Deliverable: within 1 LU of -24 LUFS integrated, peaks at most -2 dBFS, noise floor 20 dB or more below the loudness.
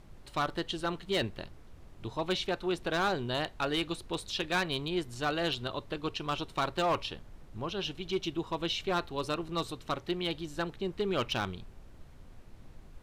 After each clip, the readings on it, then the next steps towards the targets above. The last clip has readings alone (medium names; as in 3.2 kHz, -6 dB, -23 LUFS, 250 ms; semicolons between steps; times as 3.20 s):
clipped samples 0.9%; clipping level -23.5 dBFS; noise floor -52 dBFS; noise floor target -54 dBFS; loudness -33.5 LUFS; peak level -23.5 dBFS; loudness target -24.0 LUFS
-> clip repair -23.5 dBFS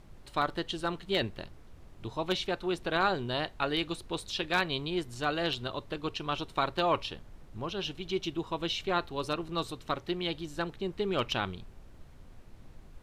clipped samples 0.0%; noise floor -52 dBFS; noise floor target -53 dBFS
-> noise print and reduce 6 dB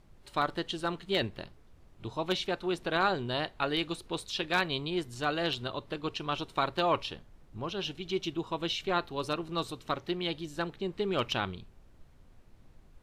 noise floor -58 dBFS; loudness -33.0 LUFS; peak level -14.5 dBFS; loudness target -24.0 LUFS
-> trim +9 dB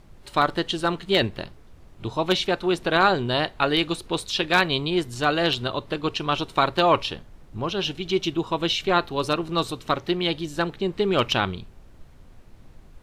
loudness -24.0 LUFS; peak level -5.5 dBFS; noise floor -49 dBFS